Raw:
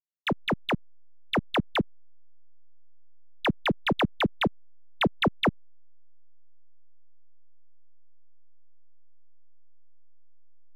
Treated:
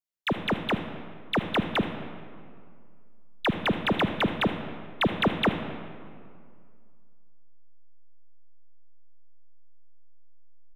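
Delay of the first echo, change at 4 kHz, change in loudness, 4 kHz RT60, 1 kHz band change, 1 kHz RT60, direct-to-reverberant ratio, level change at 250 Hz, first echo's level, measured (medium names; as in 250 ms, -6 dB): 77 ms, +0.5 dB, +0.5 dB, 1.3 s, +0.5 dB, 2.1 s, 7.5 dB, +1.0 dB, -16.5 dB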